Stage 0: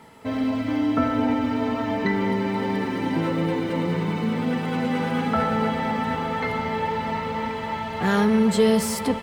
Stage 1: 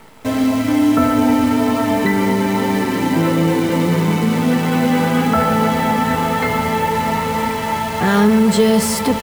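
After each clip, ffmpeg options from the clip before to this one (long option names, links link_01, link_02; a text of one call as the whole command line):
ffmpeg -i in.wav -filter_complex "[0:a]asplit=2[link_01][link_02];[link_02]alimiter=limit=-16.5dB:level=0:latency=1,volume=1.5dB[link_03];[link_01][link_03]amix=inputs=2:normalize=0,acrusher=bits=6:dc=4:mix=0:aa=0.000001,asplit=2[link_04][link_05];[link_05]adelay=24,volume=-14dB[link_06];[link_04][link_06]amix=inputs=2:normalize=0,volume=1.5dB" out.wav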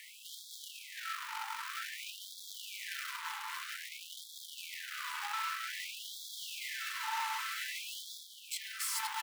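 ffmpeg -i in.wav -af "alimiter=limit=-15.5dB:level=0:latency=1,asoftclip=type=tanh:threshold=-33dB,afftfilt=real='re*gte(b*sr/1024,810*pow(3300/810,0.5+0.5*sin(2*PI*0.52*pts/sr)))':imag='im*gte(b*sr/1024,810*pow(3300/810,0.5+0.5*sin(2*PI*0.52*pts/sr)))':win_size=1024:overlap=0.75,volume=1dB" out.wav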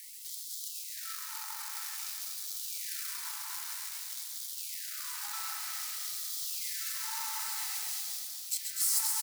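ffmpeg -i in.wav -filter_complex "[0:a]asplit=2[link_01][link_02];[link_02]asplit=7[link_03][link_04][link_05][link_06][link_07][link_08][link_09];[link_03]adelay=131,afreqshift=-32,volume=-6.5dB[link_10];[link_04]adelay=262,afreqshift=-64,volume=-11.7dB[link_11];[link_05]adelay=393,afreqshift=-96,volume=-16.9dB[link_12];[link_06]adelay=524,afreqshift=-128,volume=-22.1dB[link_13];[link_07]adelay=655,afreqshift=-160,volume=-27.3dB[link_14];[link_08]adelay=786,afreqshift=-192,volume=-32.5dB[link_15];[link_09]adelay=917,afreqshift=-224,volume=-37.7dB[link_16];[link_10][link_11][link_12][link_13][link_14][link_15][link_16]amix=inputs=7:normalize=0[link_17];[link_01][link_17]amix=inputs=2:normalize=0,aexciter=amount=5.7:drive=4.5:freq=4300,asplit=2[link_18][link_19];[link_19]aecho=0:1:246|492|738|984|1230:0.501|0.21|0.0884|0.0371|0.0156[link_20];[link_18][link_20]amix=inputs=2:normalize=0,volume=-8dB" out.wav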